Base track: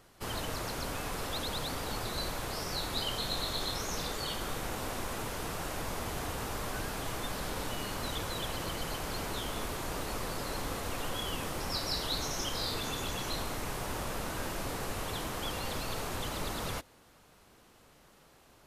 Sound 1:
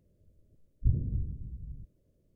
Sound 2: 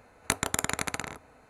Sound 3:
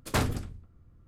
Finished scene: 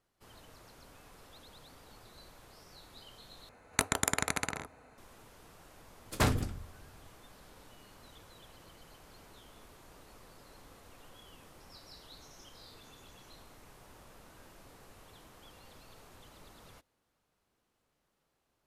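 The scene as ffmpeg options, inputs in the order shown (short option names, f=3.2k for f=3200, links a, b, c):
-filter_complex "[0:a]volume=-19.5dB,asplit=2[a][b];[a]atrim=end=3.494[c];[2:a]atrim=end=1.49,asetpts=PTS-STARTPTS,volume=-1.5dB[d];[b]atrim=start=4.976[e];[3:a]atrim=end=1.07,asetpts=PTS-STARTPTS,volume=-1dB,afade=t=in:d=0.004:c=hsin,afade=t=out:st=1.066:d=0.004:c=hsin,adelay=6060[f];[c][d]acrossfade=d=0.004:c1=hsin:c2=hsin[g];[g][e]acrossfade=d=0.004:c1=hsin:c2=hsin[h];[h][f]amix=inputs=2:normalize=0"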